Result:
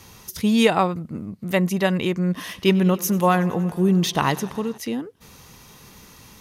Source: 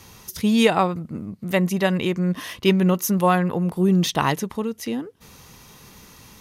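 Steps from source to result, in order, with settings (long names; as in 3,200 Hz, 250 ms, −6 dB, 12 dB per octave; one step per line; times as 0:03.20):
0:02.30–0:04.78: feedback echo with a swinging delay time 93 ms, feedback 78%, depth 78 cents, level −21 dB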